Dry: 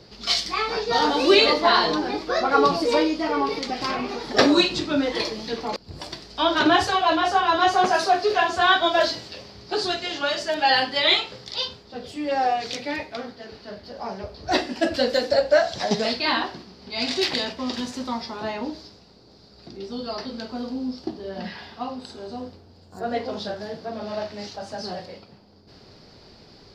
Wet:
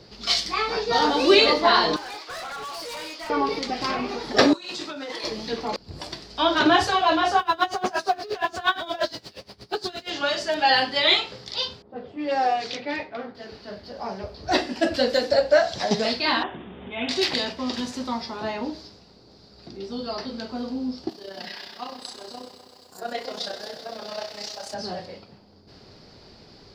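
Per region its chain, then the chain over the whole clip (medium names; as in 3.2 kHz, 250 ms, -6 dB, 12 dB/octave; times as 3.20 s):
1.96–3.30 s: high-pass 910 Hz + compression 3:1, threshold -25 dBFS + hard clipper -32.5 dBFS
4.53–5.24 s: high-pass 1.1 kHz 6 dB/octave + peaking EQ 3 kHz -5 dB 2.4 oct + compressor with a negative ratio -35 dBFS
7.39–10.10 s: companding laws mixed up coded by mu + logarithmic tremolo 8.5 Hz, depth 23 dB
11.82–13.35 s: level-controlled noise filter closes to 700 Hz, open at -20.5 dBFS + high-pass 160 Hz 6 dB/octave
16.43–17.09 s: Chebyshev low-pass 3.6 kHz, order 10 + upward compressor, threshold -31 dBFS
21.09–24.74 s: RIAA curve recording + AM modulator 31 Hz, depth 45% + bit-crushed delay 128 ms, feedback 80%, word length 10-bit, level -12 dB
whole clip: none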